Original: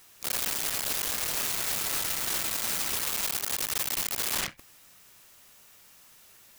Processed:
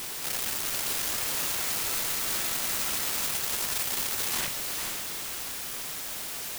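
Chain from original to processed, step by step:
hard clipping −28 dBFS, distortion −13 dB
feedback delay with all-pass diffusion 469 ms, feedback 40%, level −3.5 dB
bit-depth reduction 6 bits, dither triangular

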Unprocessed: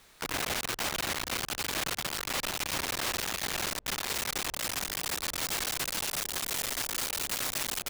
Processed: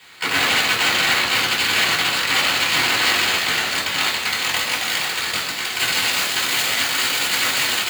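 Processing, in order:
spectral tilt +2.5 dB per octave
0:03.41–0:05.77: compressor whose output falls as the input rises −30 dBFS, ratio −0.5
convolution reverb RT60 0.90 s, pre-delay 3 ms, DRR −6.5 dB
level −2.5 dB

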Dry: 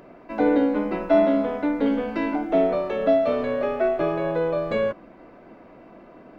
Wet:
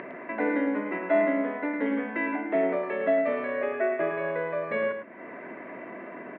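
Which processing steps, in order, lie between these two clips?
upward compression, threshold −24 dBFS
loudspeaker in its box 310–2,300 Hz, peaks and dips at 310 Hz −5 dB, 500 Hz −7 dB, 780 Hz −9 dB, 1,300 Hz −7 dB, 1,900 Hz +9 dB
single-tap delay 108 ms −7 dB

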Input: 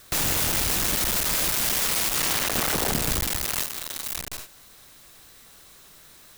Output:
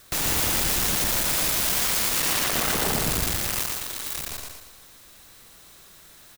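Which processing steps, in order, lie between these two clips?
repeating echo 116 ms, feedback 43%, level −3 dB
level −1.5 dB

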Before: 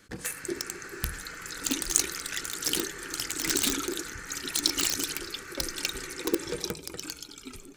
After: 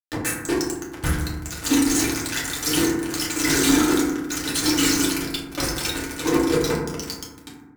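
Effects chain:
fuzz pedal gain 35 dB, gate −33 dBFS
feedback delay network reverb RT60 1.1 s, low-frequency decay 1.6×, high-frequency decay 0.3×, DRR −6.5 dB
level −7 dB

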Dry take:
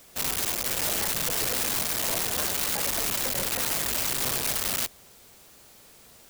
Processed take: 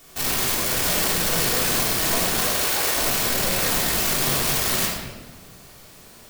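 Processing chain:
0:02.38–0:02.96: high-pass filter 290 Hz 24 dB per octave
rectangular room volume 1,000 cubic metres, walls mixed, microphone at 3.4 metres

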